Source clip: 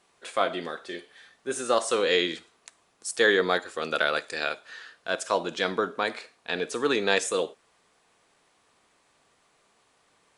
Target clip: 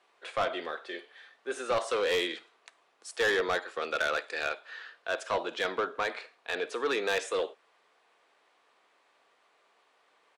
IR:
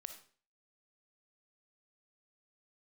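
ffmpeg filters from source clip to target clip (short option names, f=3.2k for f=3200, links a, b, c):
-filter_complex "[0:a]aresample=32000,aresample=44100,acrossover=split=330 4200:gain=0.0794 1 0.2[a][b][c];[a][b][c]amix=inputs=3:normalize=0,asoftclip=type=tanh:threshold=-22dB"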